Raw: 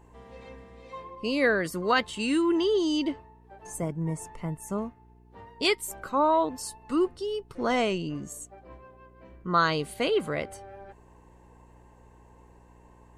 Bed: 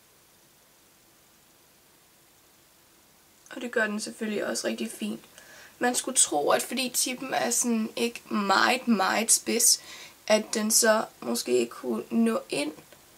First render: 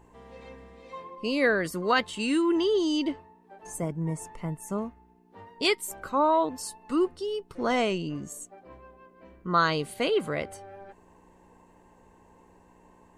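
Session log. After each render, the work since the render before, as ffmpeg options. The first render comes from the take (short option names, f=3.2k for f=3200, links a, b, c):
-af "bandreject=f=60:t=h:w=4,bandreject=f=120:t=h:w=4"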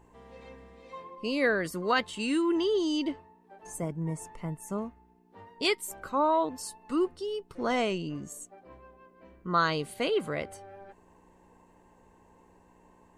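-af "volume=-2.5dB"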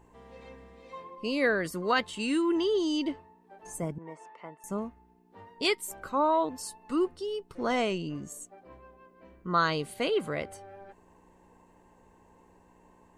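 -filter_complex "[0:a]asettb=1/sr,asplit=3[a][b][c];[a]atrim=end=3.984[d];[b]atrim=start=3.98:end=4.64,asetpts=PTS-STARTPTS,afade=t=in:d=0.004:c=qsin,afade=t=out:st=0.656:d=0.004:c=qsin,highpass=490,lowpass=3.2k[e];[c]atrim=start=4.636[f];[d][e]acrossfade=d=0.004:c1=hsin:c2=qsin[g];[g][f]acrossfade=d=0.004:c1=qsin:c2=hsin"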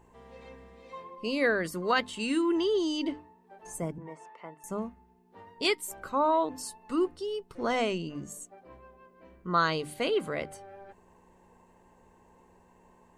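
-af "bandreject=f=50:t=h:w=6,bandreject=f=100:t=h:w=6,bandreject=f=150:t=h:w=6,bandreject=f=200:t=h:w=6,bandreject=f=250:t=h:w=6,bandreject=f=300:t=h:w=6"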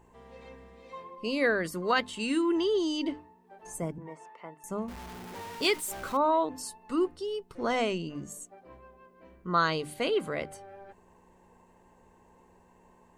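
-filter_complex "[0:a]asettb=1/sr,asplit=3[a][b][c];[a]atrim=end=4.884[d];[b]atrim=start=4.88:end=6.17,asetpts=PTS-STARTPTS,afade=t=in:d=0.004:c=qsin,afade=t=out:st=1.286:d=0.004:c=qsin,aeval=exprs='val(0)+0.5*0.0126*sgn(val(0))':c=same[e];[c]atrim=start=6.166[f];[d][e]acrossfade=d=0.004:c1=hsin:c2=qsin[g];[g][f]acrossfade=d=0.004:c1=qsin:c2=hsin"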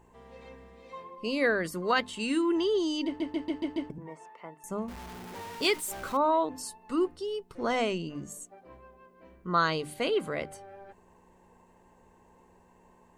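-filter_complex "[0:a]asplit=7[a][b][c][d][e][f][g];[a]atrim=end=3.202[h];[b]atrim=start=3.058:end=3.202[i];[c]atrim=start=3.058:end=3.202[j];[d]atrim=start=3.058:end=3.202[k];[e]atrim=start=3.058:end=3.202[l];[f]atrim=start=3.058:end=3.202[m];[g]atrim=start=3.898[n];[h][i]acrossfade=d=0.004:c1=hsin:c2=hsin[o];[o][j]acrossfade=d=0.004:c1=hsin:c2=hsin[p];[p][k]acrossfade=d=0.004:c1=hsin:c2=hsin[q];[q][l]acrossfade=d=0.004:c1=hsin:c2=hsin[r];[r][m]acrossfade=d=0.004:c1=hsin:c2=hsin[s];[s][n]acrossfade=d=0.004:c1=hsin:c2=hsin"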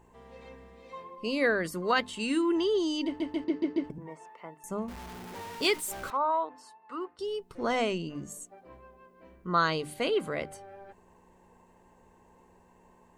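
-filter_complex "[0:a]asettb=1/sr,asplit=3[a][b][c];[a]atrim=end=3.444[d];[b]atrim=start=3.44:end=3.84,asetpts=PTS-STARTPTS,afade=t=in:d=0.004:c=qsin,afade=t=out:st=0.396:d=0.004:c=qsin,highpass=f=110:w=0.5412,highpass=f=110:w=1.3066,equalizer=f=180:t=q:w=4:g=4,equalizer=f=390:t=q:w=4:g=10,equalizer=f=800:t=q:w=4:g=-10,equalizer=f=3.1k:t=q:w=4:g=-7,lowpass=f=6.1k:w=0.5412,lowpass=f=6.1k:w=1.3066[e];[c]atrim=start=3.836[f];[d][e]acrossfade=d=0.004:c1=hsin:c2=qsin[g];[g][f]acrossfade=d=0.004:c1=qsin:c2=hsin,asettb=1/sr,asplit=3[h][i][j];[h]atrim=end=6.104[k];[i]atrim=start=6.1:end=7.19,asetpts=PTS-STARTPTS,afade=t=in:d=0.004:c=qsin,afade=t=out:st=1.086:d=0.004:c=qsin,bandpass=f=1.2k:t=q:w=1.1[l];[j]atrim=start=7.186[m];[k][l]acrossfade=d=0.004:c1=hsin:c2=qsin[n];[n][m]acrossfade=d=0.004:c1=qsin:c2=hsin"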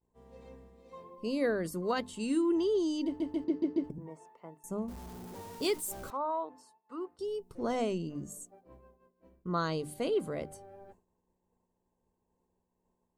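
-af "agate=range=-33dB:threshold=-48dB:ratio=3:detection=peak,equalizer=f=2.1k:t=o:w=2.5:g=-12"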